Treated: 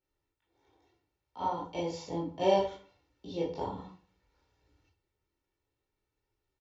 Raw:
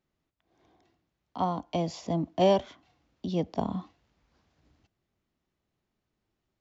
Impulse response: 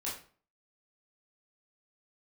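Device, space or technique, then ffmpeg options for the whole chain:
microphone above a desk: -filter_complex "[0:a]aecho=1:1:2.2:0.68[link_01];[1:a]atrim=start_sample=2205[link_02];[link_01][link_02]afir=irnorm=-1:irlink=0,volume=-6dB"

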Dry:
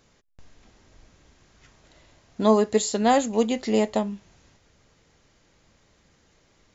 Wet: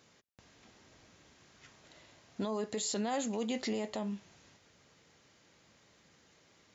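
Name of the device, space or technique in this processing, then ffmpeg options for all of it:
broadcast voice chain: -af "highpass=110,deesser=0.4,acompressor=threshold=-23dB:ratio=4,equalizer=frequency=3200:width_type=o:width=2.7:gain=3,alimiter=limit=-23dB:level=0:latency=1:release=12,volume=-3.5dB"

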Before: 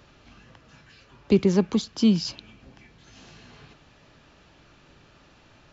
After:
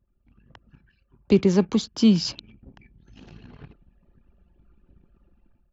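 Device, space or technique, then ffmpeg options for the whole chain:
voice memo with heavy noise removal: -af "anlmdn=0.0398,dynaudnorm=framelen=340:gausssize=3:maxgain=14.5dB,volume=-5.5dB"

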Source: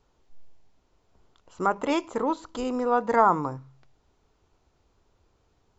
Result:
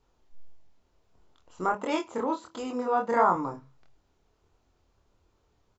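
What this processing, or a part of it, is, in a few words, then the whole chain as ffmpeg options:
double-tracked vocal: -filter_complex "[0:a]asplit=2[link_01][link_02];[link_02]adelay=26,volume=-11.5dB[link_03];[link_01][link_03]amix=inputs=2:normalize=0,flanger=delay=22.5:depth=5.3:speed=1.5,asettb=1/sr,asplit=3[link_04][link_05][link_06];[link_04]atrim=end=1.744[link_07];[link_05]atrim=start=1.74:end=3.36,asetpts=PTS-STARTPTS,afade=type=in:duration=0.004:curve=qsin,afade=type=out:start_time=1.616:duration=0.004:curve=qsin,highpass=110[link_08];[link_06]atrim=start=3.356[link_09];[link_07][link_08]acrossfade=duration=0.004:curve1=hsin:curve2=qsin[link_10];[link_10][link_09]acrossfade=duration=0.004:curve1=qsin:curve2=hsin"

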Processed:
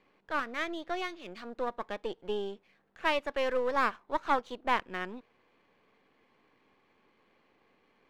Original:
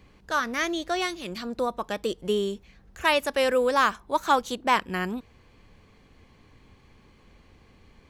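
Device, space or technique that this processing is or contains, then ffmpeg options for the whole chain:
crystal radio: -af "highpass=320,lowpass=2800,aeval=exprs='if(lt(val(0),0),0.447*val(0),val(0))':channel_layout=same,volume=-4dB"

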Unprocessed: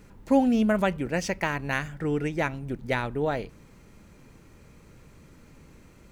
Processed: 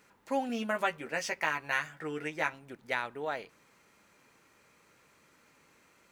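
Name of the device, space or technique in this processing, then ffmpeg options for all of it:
filter by subtraction: -filter_complex "[0:a]asettb=1/sr,asplit=3[link_01][link_02][link_03];[link_01]atrim=end=0.484[link_04];[link_02]atrim=start=0.48:end=2.53,asetpts=PTS-STARTPTS,afade=type=in:duration=0.004:curve=qsin,afade=type=out:start_time=2.046:duration=0.004:curve=qsin,asplit=2[link_05][link_06];[link_06]adelay=13,volume=-4.5dB[link_07];[link_05][link_07]amix=inputs=2:normalize=0,atrim=end_sample=90405[link_08];[link_03]atrim=start=2.526[link_09];[link_04][link_08]acrossfade=duration=0.004:curve1=hsin:curve2=qsin[link_10];[link_10][link_09]acrossfade=duration=0.004:curve1=qsin:curve2=hsin,asplit=2[link_11][link_12];[link_12]lowpass=1300,volume=-1[link_13];[link_11][link_13]amix=inputs=2:normalize=0,volume=-4.5dB"

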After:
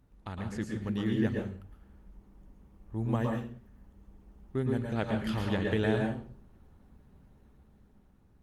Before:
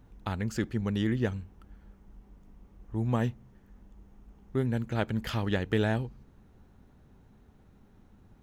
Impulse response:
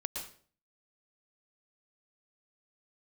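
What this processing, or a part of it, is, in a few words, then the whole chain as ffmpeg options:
speakerphone in a meeting room: -filter_complex "[1:a]atrim=start_sample=2205[link_01];[0:a][link_01]afir=irnorm=-1:irlink=0,dynaudnorm=framelen=140:gausssize=13:maxgain=4dB,volume=-5.5dB" -ar 48000 -c:a libopus -b:a 32k

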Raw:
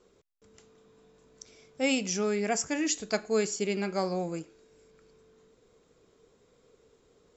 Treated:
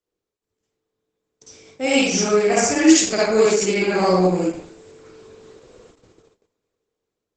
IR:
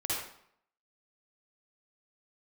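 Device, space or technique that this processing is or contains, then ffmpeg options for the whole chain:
speakerphone in a meeting room: -filter_complex "[1:a]atrim=start_sample=2205[link_01];[0:a][link_01]afir=irnorm=-1:irlink=0,dynaudnorm=framelen=360:gausssize=9:maxgain=15.5dB,agate=range=-25dB:threshold=-46dB:ratio=16:detection=peak" -ar 48000 -c:a libopus -b:a 12k

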